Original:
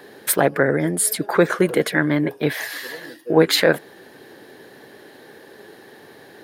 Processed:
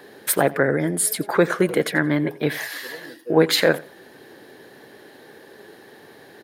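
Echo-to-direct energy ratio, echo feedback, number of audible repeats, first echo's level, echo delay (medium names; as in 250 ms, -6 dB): -20.0 dB, 23%, 2, -20.0 dB, 87 ms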